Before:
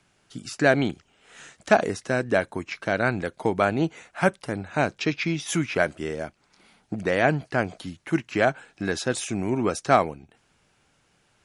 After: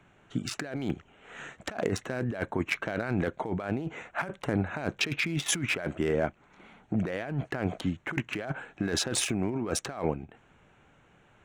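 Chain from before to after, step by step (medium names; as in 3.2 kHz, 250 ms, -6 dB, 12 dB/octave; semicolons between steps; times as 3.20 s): local Wiener filter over 9 samples; compressor with a negative ratio -31 dBFS, ratio -1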